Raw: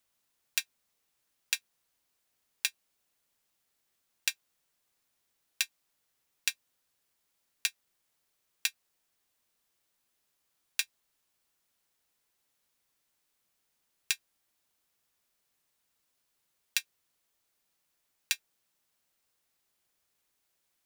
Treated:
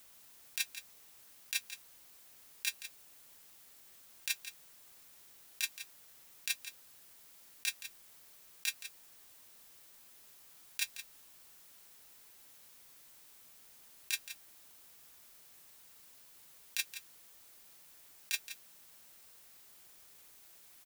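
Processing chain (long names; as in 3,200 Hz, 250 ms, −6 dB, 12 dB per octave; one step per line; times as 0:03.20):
high-shelf EQ 10,000 Hz +5.5 dB
compressor whose output falls as the input rises −39 dBFS, ratio −1
on a send: single-tap delay 171 ms −11.5 dB
on the sum: level +5.5 dB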